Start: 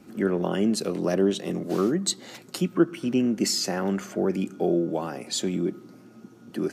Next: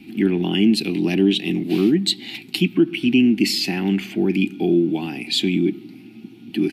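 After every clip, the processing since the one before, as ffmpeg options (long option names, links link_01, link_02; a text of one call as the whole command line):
ffmpeg -i in.wav -af "firequalizer=gain_entry='entry(140,0);entry(310,6);entry(540,-21);entry(780,-3);entry(1200,-16);entry(2400,13);entry(4200,5);entry(6300,-11);entry(11000,0)':delay=0.05:min_phase=1,alimiter=level_in=11dB:limit=-1dB:release=50:level=0:latency=1,volume=-6dB" out.wav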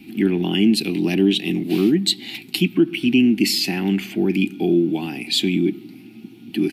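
ffmpeg -i in.wav -af "highshelf=frequency=9900:gain=8.5" out.wav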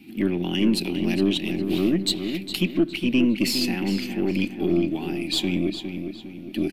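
ffmpeg -i in.wav -filter_complex "[0:a]aeval=exprs='0.562*(cos(1*acos(clip(val(0)/0.562,-1,1)))-cos(1*PI/2))+0.0355*(cos(4*acos(clip(val(0)/0.562,-1,1)))-cos(4*PI/2))+0.00355*(cos(8*acos(clip(val(0)/0.562,-1,1)))-cos(8*PI/2))':channel_layout=same,asplit=2[link_01][link_02];[link_02]adelay=409,lowpass=frequency=3600:poles=1,volume=-7.5dB,asplit=2[link_03][link_04];[link_04]adelay=409,lowpass=frequency=3600:poles=1,volume=0.43,asplit=2[link_05][link_06];[link_06]adelay=409,lowpass=frequency=3600:poles=1,volume=0.43,asplit=2[link_07][link_08];[link_08]adelay=409,lowpass=frequency=3600:poles=1,volume=0.43,asplit=2[link_09][link_10];[link_10]adelay=409,lowpass=frequency=3600:poles=1,volume=0.43[link_11];[link_01][link_03][link_05][link_07][link_09][link_11]amix=inputs=6:normalize=0,volume=-5dB" out.wav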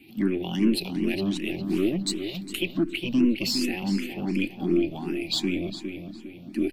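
ffmpeg -i in.wav -filter_complex "[0:a]asplit=2[link_01][link_02];[link_02]afreqshift=2.7[link_03];[link_01][link_03]amix=inputs=2:normalize=1" out.wav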